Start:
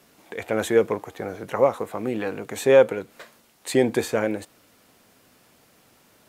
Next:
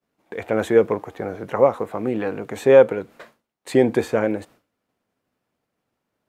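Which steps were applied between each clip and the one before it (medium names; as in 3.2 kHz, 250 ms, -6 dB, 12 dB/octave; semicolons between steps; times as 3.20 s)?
expander -44 dBFS; treble shelf 3 kHz -11.5 dB; trim +3.5 dB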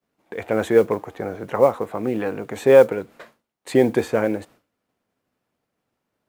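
modulation noise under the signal 33 dB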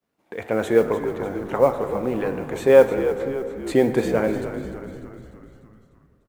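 frequency-shifting echo 298 ms, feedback 57%, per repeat -65 Hz, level -11 dB; on a send at -9.5 dB: reverberation RT60 2.6 s, pre-delay 18 ms; on the sum: trim -1.5 dB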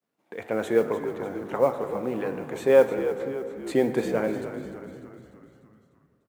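high-pass 120 Hz 12 dB/octave; trim -4.5 dB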